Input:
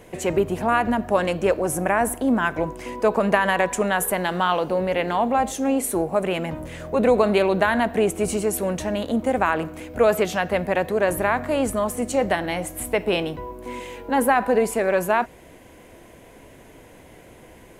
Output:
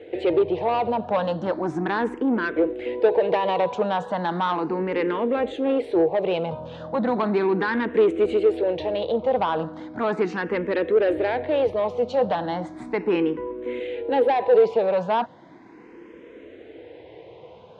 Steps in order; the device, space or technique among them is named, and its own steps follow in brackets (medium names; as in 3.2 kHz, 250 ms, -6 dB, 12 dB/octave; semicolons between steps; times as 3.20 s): barber-pole phaser into a guitar amplifier (barber-pole phaser +0.36 Hz; saturation -19.5 dBFS, distortion -13 dB; cabinet simulation 100–4200 Hz, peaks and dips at 330 Hz +8 dB, 470 Hz +10 dB, 880 Hz +5 dB, 3.7 kHz +4 dB)